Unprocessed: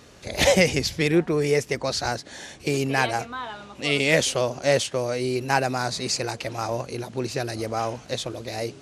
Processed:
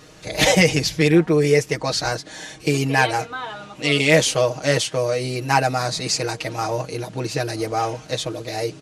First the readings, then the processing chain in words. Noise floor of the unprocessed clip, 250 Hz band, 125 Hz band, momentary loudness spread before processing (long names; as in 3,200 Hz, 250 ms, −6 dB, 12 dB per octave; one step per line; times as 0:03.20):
−47 dBFS, +5.0 dB, +5.5 dB, 12 LU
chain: comb filter 6.4 ms, depth 75%
level +2 dB